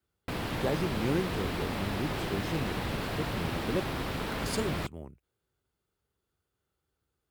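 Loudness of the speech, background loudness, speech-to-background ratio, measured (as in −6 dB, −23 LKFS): −36.0 LKFS, −34.5 LKFS, −1.5 dB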